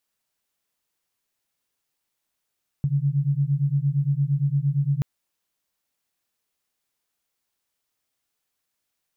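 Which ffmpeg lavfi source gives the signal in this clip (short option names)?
-f lavfi -i "aevalsrc='0.075*(sin(2*PI*137*t)+sin(2*PI*145.7*t))':d=2.18:s=44100"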